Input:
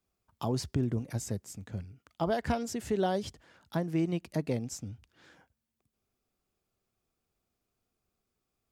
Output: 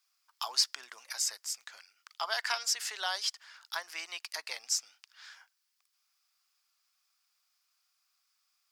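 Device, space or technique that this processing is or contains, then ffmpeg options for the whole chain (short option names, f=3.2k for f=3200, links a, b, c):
headphones lying on a table: -af "highpass=f=1.1k:w=0.5412,highpass=f=1.1k:w=1.3066,equalizer=f=5k:t=o:w=0.52:g=9.5,volume=7.5dB"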